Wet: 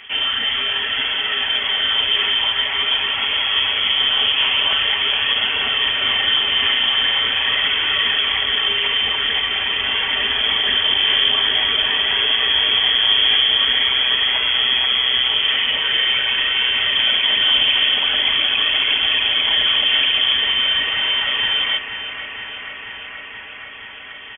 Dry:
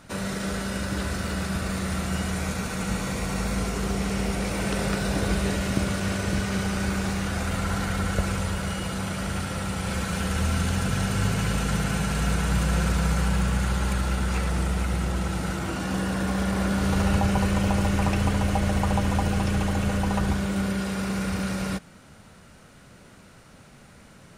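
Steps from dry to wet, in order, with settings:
parametric band 1,100 Hz +5.5 dB 2.1 octaves
comb filter 5.6 ms, depth 49%
brickwall limiter −15 dBFS, peak gain reduction 8 dB
phase shifter 0.45 Hz, delay 1.8 ms, feedback 31%
on a send: feedback echo with a high-pass in the loop 479 ms, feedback 84%, high-pass 220 Hz, level −10 dB
on the sum: voice inversion scrambler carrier 3,300 Hz
level +4.5 dB

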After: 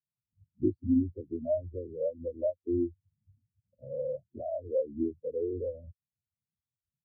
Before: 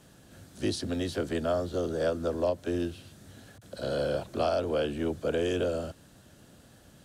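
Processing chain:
downward compressor 2 to 1, threshold −41 dBFS, peak gain reduction 10.5 dB
low-shelf EQ 310 Hz +8.5 dB
every bin expanded away from the loudest bin 4 to 1
level +4.5 dB

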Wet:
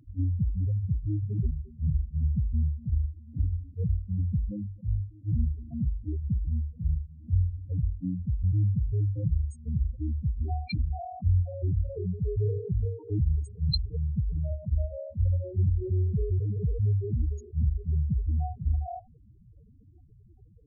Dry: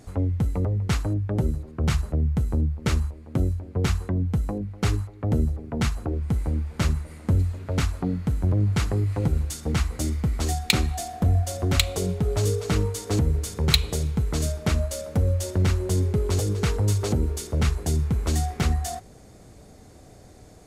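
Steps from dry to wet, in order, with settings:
flanger 1.5 Hz, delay 1.6 ms, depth 8.4 ms, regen −89%
spectral peaks only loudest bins 4
level that may rise only so fast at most 370 dB per second
level +2 dB

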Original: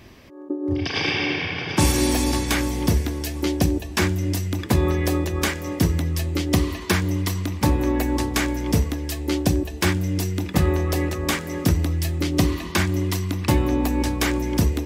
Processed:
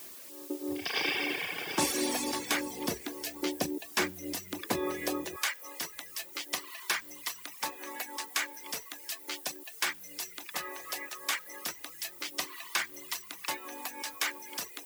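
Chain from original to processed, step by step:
high-pass filter 350 Hz 12 dB per octave, from 0:05.36 1,000 Hz
background noise blue −41 dBFS
reverb reduction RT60 0.66 s
level −5.5 dB

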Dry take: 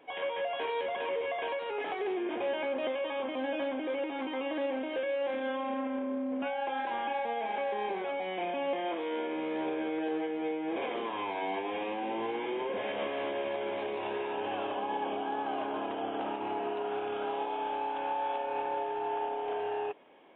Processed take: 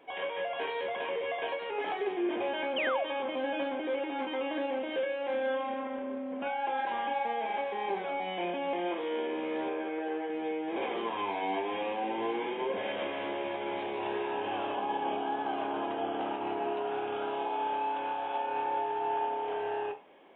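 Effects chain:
0:09.68–0:10.30: bass and treble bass −7 dB, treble −14 dB
convolution reverb RT60 0.35 s, pre-delay 5 ms, DRR 6 dB
0:02.76–0:03.04: sound drawn into the spectrogram fall 570–3,300 Hz −33 dBFS

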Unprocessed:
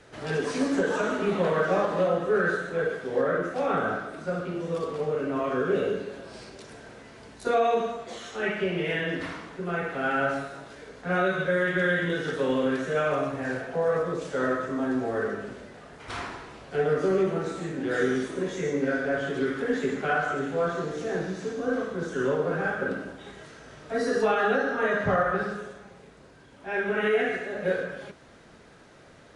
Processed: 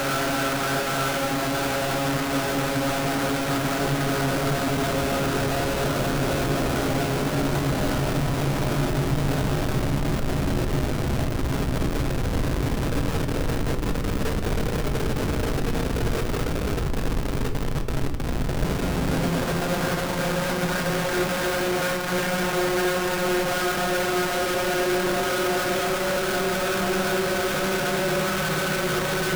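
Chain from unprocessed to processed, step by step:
extreme stretch with random phases 27×, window 0.25 s, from 0:10.30
treble cut that deepens with the level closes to 2,200 Hz, closed at −20.5 dBFS
comparator with hysteresis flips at −39.5 dBFS
on a send: convolution reverb RT60 0.70 s, pre-delay 3 ms, DRR 5.5 dB
on the sum: level +4.5 dB

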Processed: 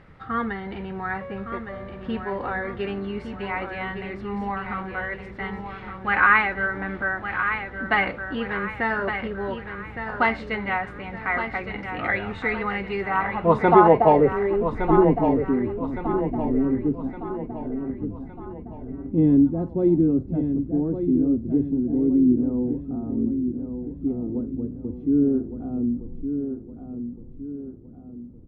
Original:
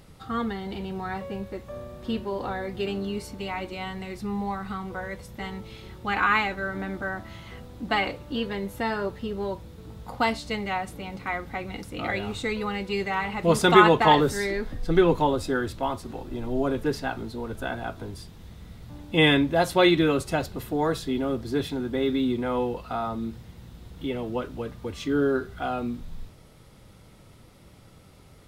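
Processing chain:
high-shelf EQ 5,700 Hz +8.5 dB
low-pass filter sweep 1,800 Hz → 270 Hz, 0:12.85–0:15.09
0:17.09–0:17.90: meter weighting curve A
on a send: repeating echo 1,163 ms, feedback 44%, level −8 dB

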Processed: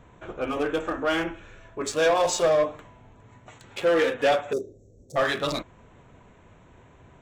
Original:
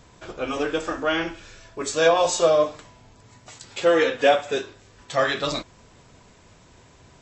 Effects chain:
adaptive Wiener filter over 9 samples
0:04.53–0:05.16: elliptic band-stop filter 540–5,500 Hz, stop band 40 dB
soft clipping −15 dBFS, distortion −13 dB

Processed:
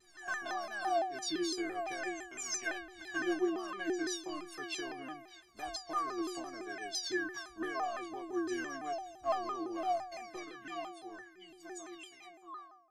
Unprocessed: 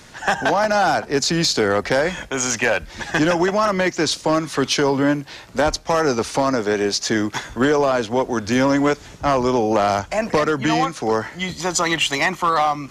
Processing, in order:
fade-out on the ending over 3.74 s
stiff-string resonator 340 Hz, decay 0.79 s, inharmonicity 0.03
pitch modulation by a square or saw wave saw down 5.9 Hz, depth 160 cents
level +1.5 dB

